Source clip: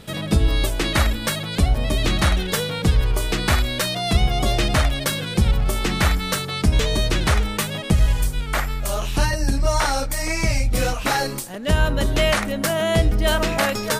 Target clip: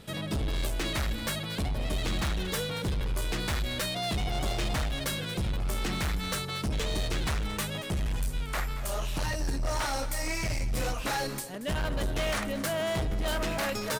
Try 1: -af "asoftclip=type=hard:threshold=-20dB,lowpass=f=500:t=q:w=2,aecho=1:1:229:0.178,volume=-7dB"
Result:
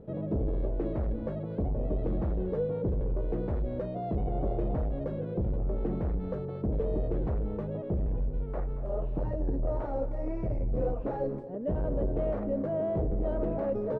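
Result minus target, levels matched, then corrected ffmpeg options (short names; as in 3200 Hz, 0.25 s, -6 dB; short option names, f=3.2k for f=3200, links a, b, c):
500 Hz band +4.5 dB
-af "asoftclip=type=hard:threshold=-20dB,aecho=1:1:229:0.178,volume=-7dB"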